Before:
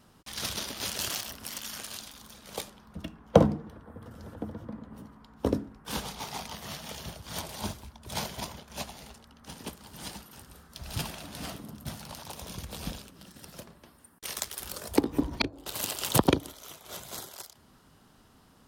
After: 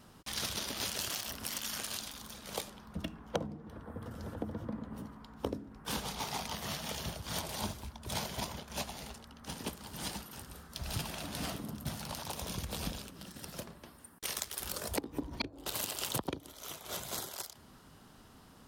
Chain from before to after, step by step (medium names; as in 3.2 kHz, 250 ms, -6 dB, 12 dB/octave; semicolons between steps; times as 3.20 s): compression 8:1, threshold -35 dBFS, peak gain reduction 22.5 dB; trim +2 dB